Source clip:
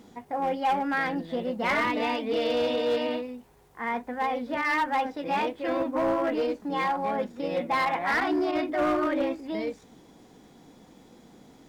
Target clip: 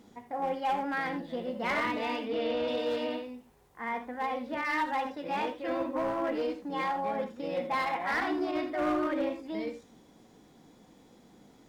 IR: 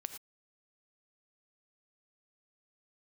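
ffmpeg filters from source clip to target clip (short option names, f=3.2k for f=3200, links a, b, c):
-filter_complex "[0:a]asettb=1/sr,asplit=3[a][b][c];[a]atrim=end=2.264[d];[b]atrim=start=2.26:end=2.68,asetpts=PTS-STARTPTS,afade=t=in:d=0.004:c=qsin,afade=t=out:st=0.416:d=0.004:c=qsin,acrossover=split=4000[e][f];[f]acompressor=threshold=-58dB:ratio=4:attack=1:release=60[g];[e][g]amix=inputs=2:normalize=0[h];[c]atrim=start=2.676[i];[d][h]acrossfade=d=0.004:c1=hsin:c2=qsin[j];[j][i]acrossfade=d=0.004:c1=qsin:c2=hsin[k];[1:a]atrim=start_sample=2205,asetrate=57330,aresample=44100[l];[k][l]afir=irnorm=-1:irlink=0"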